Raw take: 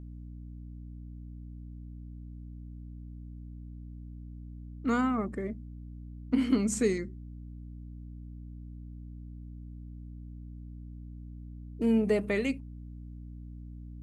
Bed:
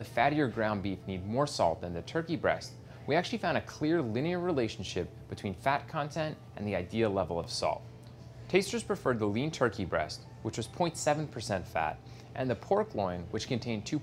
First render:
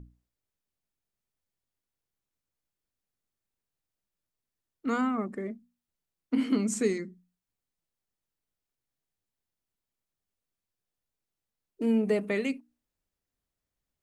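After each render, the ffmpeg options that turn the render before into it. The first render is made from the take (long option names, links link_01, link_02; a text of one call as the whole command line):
ffmpeg -i in.wav -af "bandreject=frequency=60:width_type=h:width=6,bandreject=frequency=120:width_type=h:width=6,bandreject=frequency=180:width_type=h:width=6,bandreject=frequency=240:width_type=h:width=6,bandreject=frequency=300:width_type=h:width=6" out.wav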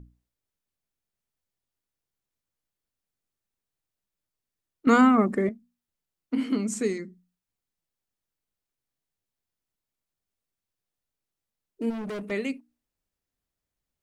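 ffmpeg -i in.wav -filter_complex "[0:a]asplit=3[link_01][link_02][link_03];[link_01]afade=type=out:start_time=11.89:duration=0.02[link_04];[link_02]volume=32dB,asoftclip=hard,volume=-32dB,afade=type=in:start_time=11.89:duration=0.02,afade=type=out:start_time=12.3:duration=0.02[link_05];[link_03]afade=type=in:start_time=12.3:duration=0.02[link_06];[link_04][link_05][link_06]amix=inputs=3:normalize=0,asplit=3[link_07][link_08][link_09];[link_07]atrim=end=4.872[link_10];[link_08]atrim=start=4.868:end=5.492,asetpts=PTS-STARTPTS,volume=10.5dB[link_11];[link_09]atrim=start=5.488[link_12];[link_10][link_11]acrossfade=duration=0.004:curve1=hsin:curve2=hsin[link_13];[link_13][link_12]acrossfade=duration=0.004:curve1=hsin:curve2=hsin" out.wav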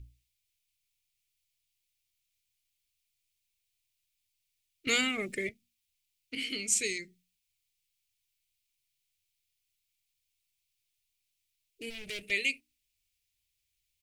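ffmpeg -i in.wav -af "firequalizer=gain_entry='entry(110,0);entry(220,-21);entry(340,-10);entry(510,-12);entry(1000,-26);entry(2300,11);entry(5800,8)':delay=0.05:min_phase=1" out.wav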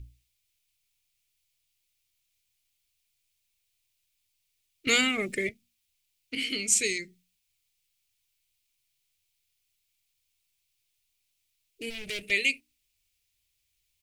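ffmpeg -i in.wav -af "volume=4.5dB" out.wav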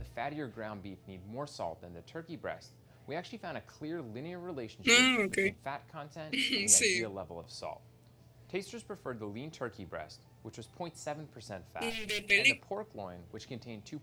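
ffmpeg -i in.wav -i bed.wav -filter_complex "[1:a]volume=-11dB[link_01];[0:a][link_01]amix=inputs=2:normalize=0" out.wav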